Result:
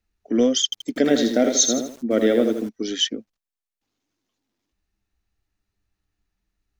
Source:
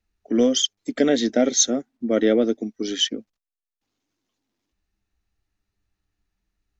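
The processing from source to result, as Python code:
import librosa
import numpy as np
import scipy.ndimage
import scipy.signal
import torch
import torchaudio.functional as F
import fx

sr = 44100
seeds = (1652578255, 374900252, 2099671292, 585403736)

y = fx.echo_crushed(x, sr, ms=81, feedback_pct=35, bits=7, wet_db=-6, at=(0.64, 2.69))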